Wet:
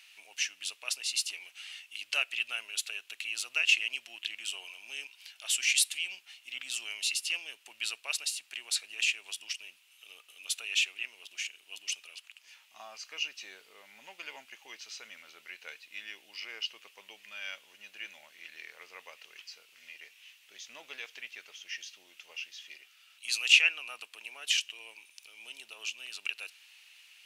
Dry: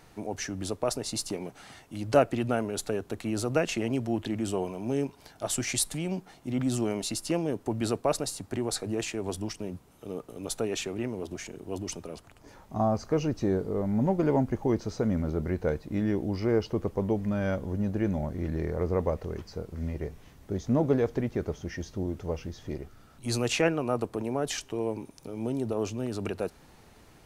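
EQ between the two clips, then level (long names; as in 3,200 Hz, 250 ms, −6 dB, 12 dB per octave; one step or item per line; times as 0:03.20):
high-pass with resonance 2,700 Hz, resonance Q 5.1
0.0 dB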